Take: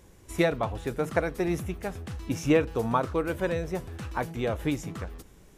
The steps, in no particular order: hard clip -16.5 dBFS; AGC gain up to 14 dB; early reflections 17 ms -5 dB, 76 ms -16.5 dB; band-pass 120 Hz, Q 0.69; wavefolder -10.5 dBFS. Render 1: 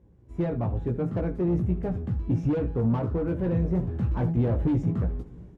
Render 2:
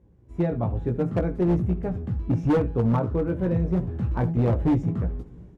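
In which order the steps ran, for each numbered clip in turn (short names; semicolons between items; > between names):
wavefolder > early reflections > AGC > hard clip > band-pass; early reflections > wavefolder > AGC > band-pass > hard clip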